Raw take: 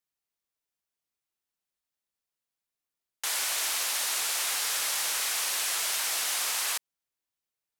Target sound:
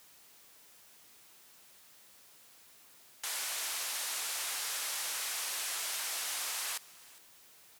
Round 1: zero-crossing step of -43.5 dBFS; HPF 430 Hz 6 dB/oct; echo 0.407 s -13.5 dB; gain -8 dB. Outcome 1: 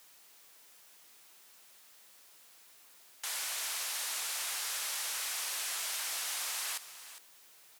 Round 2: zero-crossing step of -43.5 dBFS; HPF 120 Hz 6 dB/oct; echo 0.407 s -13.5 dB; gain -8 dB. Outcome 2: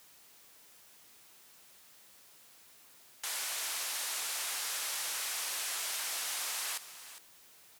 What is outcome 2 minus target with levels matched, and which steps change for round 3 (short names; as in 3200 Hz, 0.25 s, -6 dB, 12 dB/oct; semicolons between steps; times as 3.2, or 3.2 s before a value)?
echo-to-direct +8 dB
change: echo 0.407 s -21.5 dB